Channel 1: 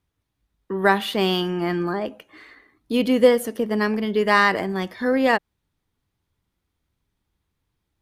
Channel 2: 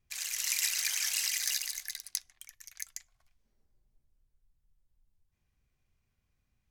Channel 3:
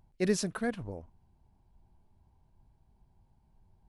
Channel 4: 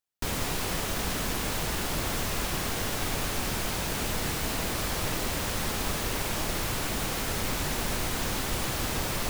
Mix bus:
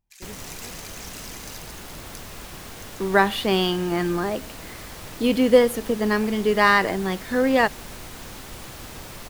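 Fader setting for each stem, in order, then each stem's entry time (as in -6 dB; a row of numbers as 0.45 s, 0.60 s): 0.0 dB, -10.0 dB, -16.0 dB, -8.5 dB; 2.30 s, 0.00 s, 0.00 s, 0.00 s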